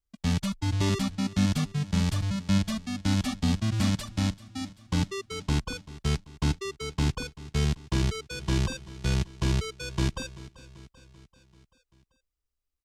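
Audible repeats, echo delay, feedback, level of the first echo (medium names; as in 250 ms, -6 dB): 4, 388 ms, 58%, -18.0 dB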